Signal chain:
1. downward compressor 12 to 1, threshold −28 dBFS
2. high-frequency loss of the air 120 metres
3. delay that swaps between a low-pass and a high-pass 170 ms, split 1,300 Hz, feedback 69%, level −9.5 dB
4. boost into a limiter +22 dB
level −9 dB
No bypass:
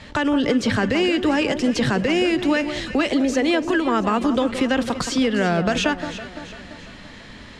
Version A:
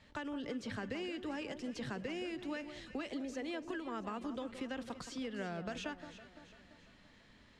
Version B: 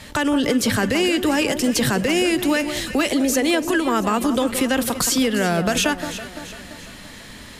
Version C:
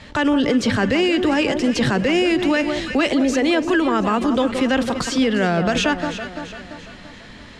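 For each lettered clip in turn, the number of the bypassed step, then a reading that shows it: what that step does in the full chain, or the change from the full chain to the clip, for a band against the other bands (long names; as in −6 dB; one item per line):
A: 4, change in crest factor +4.0 dB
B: 2, 8 kHz band +10.5 dB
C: 1, average gain reduction 3.0 dB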